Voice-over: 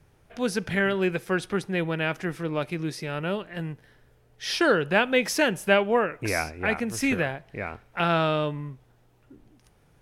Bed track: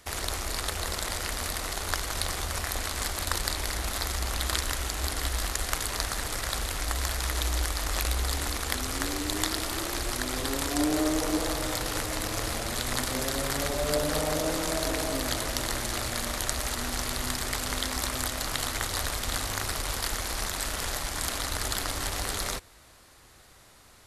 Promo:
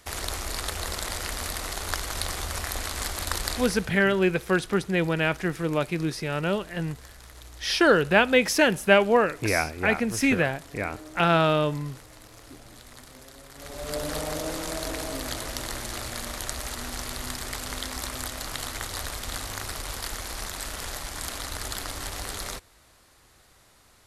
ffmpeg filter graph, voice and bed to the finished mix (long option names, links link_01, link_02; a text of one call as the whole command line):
ffmpeg -i stem1.wav -i stem2.wav -filter_complex "[0:a]adelay=3200,volume=2.5dB[link_01];[1:a]volume=15dB,afade=type=out:start_time=3.51:duration=0.41:silence=0.125893,afade=type=in:start_time=13.54:duration=0.52:silence=0.177828[link_02];[link_01][link_02]amix=inputs=2:normalize=0" out.wav